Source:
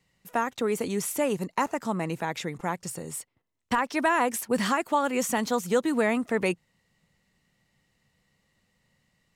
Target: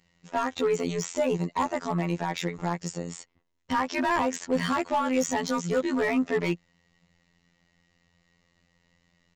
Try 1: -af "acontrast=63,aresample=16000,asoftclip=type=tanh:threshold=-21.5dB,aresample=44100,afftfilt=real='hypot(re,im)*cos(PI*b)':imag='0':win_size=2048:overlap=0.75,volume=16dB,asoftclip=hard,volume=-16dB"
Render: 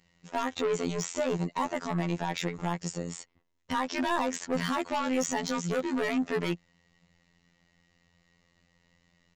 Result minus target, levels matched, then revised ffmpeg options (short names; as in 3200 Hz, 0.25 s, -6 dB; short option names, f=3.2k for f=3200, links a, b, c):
soft clip: distortion +8 dB
-af "acontrast=63,aresample=16000,asoftclip=type=tanh:threshold=-13.5dB,aresample=44100,afftfilt=real='hypot(re,im)*cos(PI*b)':imag='0':win_size=2048:overlap=0.75,volume=16dB,asoftclip=hard,volume=-16dB"